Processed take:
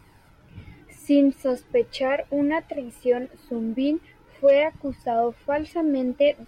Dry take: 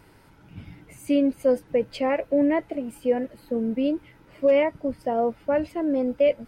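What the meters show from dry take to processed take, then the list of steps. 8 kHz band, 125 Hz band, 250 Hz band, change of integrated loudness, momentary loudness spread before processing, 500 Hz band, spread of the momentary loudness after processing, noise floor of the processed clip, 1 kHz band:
n/a, -1.0 dB, +0.5 dB, +0.5 dB, 9 LU, +0.5 dB, 11 LU, -54 dBFS, +1.5 dB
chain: dynamic EQ 4100 Hz, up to +6 dB, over -46 dBFS, Q 0.72; flange 0.41 Hz, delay 0.8 ms, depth 2.7 ms, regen +36%; gain +3.5 dB

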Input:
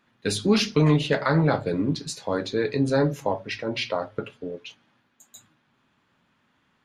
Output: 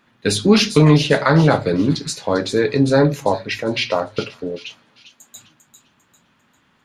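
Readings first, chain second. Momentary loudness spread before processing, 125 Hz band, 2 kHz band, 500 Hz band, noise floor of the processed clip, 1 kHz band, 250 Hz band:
14 LU, +7.5 dB, +7.5 dB, +7.5 dB, -61 dBFS, +7.5 dB, +7.5 dB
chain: thin delay 0.398 s, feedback 37%, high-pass 3300 Hz, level -8 dB; gain +7.5 dB

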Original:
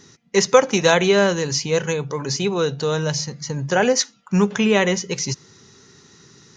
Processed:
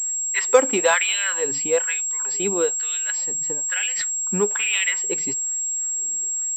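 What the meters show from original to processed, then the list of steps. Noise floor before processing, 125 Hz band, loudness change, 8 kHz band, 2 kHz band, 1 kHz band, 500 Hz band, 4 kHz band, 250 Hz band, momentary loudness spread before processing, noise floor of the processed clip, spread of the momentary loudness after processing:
-54 dBFS, -16.0 dB, -1.0 dB, +8.5 dB, -0.5 dB, -5.0 dB, -5.0 dB, -4.0 dB, -10.5 dB, 10 LU, -26 dBFS, 5 LU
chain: dynamic EQ 2800 Hz, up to +6 dB, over -33 dBFS, Q 0.74; LFO high-pass sine 1.1 Hz 250–2900 Hz; pulse-width modulation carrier 7600 Hz; gain -7 dB

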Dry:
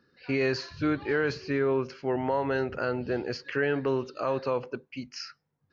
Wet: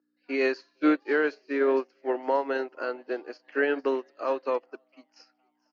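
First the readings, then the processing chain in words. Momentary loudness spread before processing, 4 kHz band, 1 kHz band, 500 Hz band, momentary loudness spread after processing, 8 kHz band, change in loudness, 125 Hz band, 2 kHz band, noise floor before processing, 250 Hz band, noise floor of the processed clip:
12 LU, -5.0 dB, +1.5 dB, +1.5 dB, 9 LU, n/a, +1.5 dB, under -25 dB, +1.5 dB, -76 dBFS, +1.0 dB, -75 dBFS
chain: hum 60 Hz, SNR 12 dB; Chebyshev high-pass 280 Hz, order 4; on a send: frequency-shifting echo 0.46 s, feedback 53%, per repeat +120 Hz, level -18.5 dB; on the sum: upward expander 2.5:1, over -42 dBFS; gain +6.5 dB

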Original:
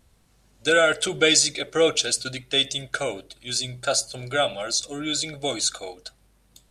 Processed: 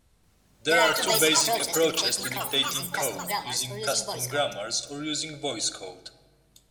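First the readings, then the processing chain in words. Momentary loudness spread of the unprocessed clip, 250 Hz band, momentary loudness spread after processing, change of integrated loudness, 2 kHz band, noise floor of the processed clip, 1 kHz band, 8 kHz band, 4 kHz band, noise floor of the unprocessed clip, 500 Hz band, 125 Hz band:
10 LU, -3.0 dB, 10 LU, -2.0 dB, -2.5 dB, -64 dBFS, +1.0 dB, -2.0 dB, -2.5 dB, -61 dBFS, -3.5 dB, -2.5 dB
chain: soft clip -5.5 dBFS, distortion -28 dB; shoebox room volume 1200 m³, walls mixed, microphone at 0.42 m; echoes that change speed 0.234 s, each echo +6 st, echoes 3; gain -4 dB

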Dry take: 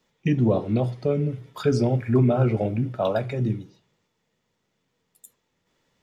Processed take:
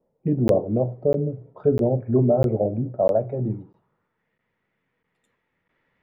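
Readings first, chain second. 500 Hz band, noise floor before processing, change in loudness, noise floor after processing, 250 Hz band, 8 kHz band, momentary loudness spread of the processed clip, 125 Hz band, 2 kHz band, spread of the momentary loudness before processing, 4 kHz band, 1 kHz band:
+4.0 dB, -75 dBFS, +1.0 dB, -76 dBFS, -0.5 dB, n/a, 8 LU, -2.0 dB, under -10 dB, 7 LU, under -10 dB, -0.5 dB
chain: low-pass sweep 590 Hz -> 2000 Hz, 3.25–4.31; crackling interface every 0.65 s, samples 512, zero, from 0.48; gain -2 dB

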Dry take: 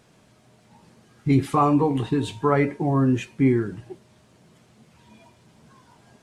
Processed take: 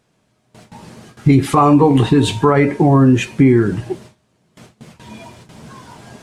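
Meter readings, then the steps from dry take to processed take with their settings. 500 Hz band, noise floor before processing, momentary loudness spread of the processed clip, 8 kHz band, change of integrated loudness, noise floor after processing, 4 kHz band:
+9.0 dB, -58 dBFS, 9 LU, n/a, +9.0 dB, -63 dBFS, +13.0 dB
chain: gate with hold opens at -45 dBFS; compressor 4:1, threshold -23 dBFS, peak gain reduction 8.5 dB; maximiser +16.5 dB; gain -1 dB

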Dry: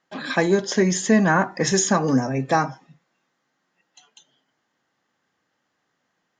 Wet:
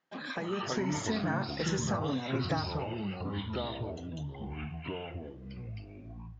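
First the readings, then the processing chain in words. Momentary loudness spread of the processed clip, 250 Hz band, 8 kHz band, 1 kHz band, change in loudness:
12 LU, -11.5 dB, -16.5 dB, -12.0 dB, -14.5 dB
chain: LPF 5700 Hz 12 dB/oct; compressor, threshold -28 dBFS, peak gain reduction 15 dB; echoes that change speed 0.203 s, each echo -5 st, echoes 3; AGC gain up to 5 dB; gain -8.5 dB

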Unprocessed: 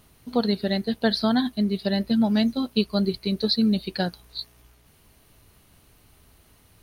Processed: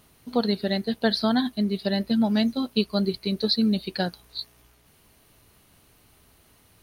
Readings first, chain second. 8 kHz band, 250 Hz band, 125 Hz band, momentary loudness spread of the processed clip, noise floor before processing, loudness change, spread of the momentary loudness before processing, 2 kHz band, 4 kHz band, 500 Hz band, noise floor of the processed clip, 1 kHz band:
n/a, -1.0 dB, -1.5 dB, 8 LU, -58 dBFS, -1.0 dB, 8 LU, 0.0 dB, 0.0 dB, -0.5 dB, -60 dBFS, 0.0 dB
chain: low shelf 99 Hz -7 dB

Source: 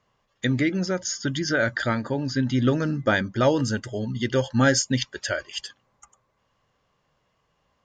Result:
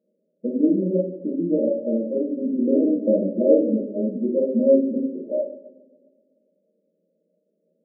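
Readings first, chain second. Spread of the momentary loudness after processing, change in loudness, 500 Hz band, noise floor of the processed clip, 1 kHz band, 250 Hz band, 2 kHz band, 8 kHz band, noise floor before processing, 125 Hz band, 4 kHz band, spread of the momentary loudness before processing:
9 LU, +2.5 dB, +6.0 dB, -73 dBFS, under -20 dB, +4.5 dB, under -40 dB, under -40 dB, -71 dBFS, n/a, under -40 dB, 9 LU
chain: two-slope reverb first 0.76 s, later 2.2 s, DRR -7 dB; FFT band-pass 170–640 Hz; gain -3 dB

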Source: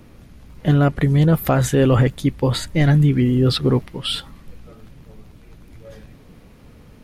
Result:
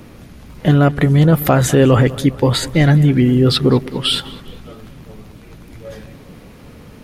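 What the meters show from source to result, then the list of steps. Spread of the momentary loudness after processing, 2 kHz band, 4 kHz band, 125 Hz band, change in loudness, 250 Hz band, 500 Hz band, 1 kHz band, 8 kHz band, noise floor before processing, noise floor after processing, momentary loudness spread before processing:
6 LU, +5.5 dB, +6.5 dB, +3.0 dB, +4.0 dB, +4.5 dB, +5.0 dB, +5.0 dB, +6.0 dB, -47 dBFS, -40 dBFS, 10 LU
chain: low shelf 70 Hz -8.5 dB; in parallel at 0 dB: compressor, threshold -24 dBFS, peak gain reduction 11.5 dB; on the sum: darkening echo 0.202 s, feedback 56%, low-pass 3200 Hz, level -17.5 dB; gain +2.5 dB

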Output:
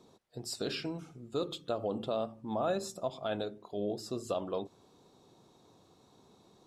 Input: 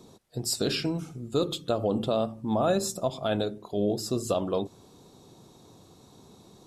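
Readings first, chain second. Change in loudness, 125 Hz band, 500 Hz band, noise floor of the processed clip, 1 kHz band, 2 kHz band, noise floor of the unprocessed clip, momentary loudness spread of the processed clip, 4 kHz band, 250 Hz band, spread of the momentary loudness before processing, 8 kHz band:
-8.0 dB, -11.5 dB, -7.0 dB, -64 dBFS, -6.0 dB, -6.5 dB, -55 dBFS, 7 LU, -8.5 dB, -9.5 dB, 6 LU, -12.0 dB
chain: LPF 3600 Hz 6 dB/oct; low shelf 280 Hz -8 dB; gain -5 dB

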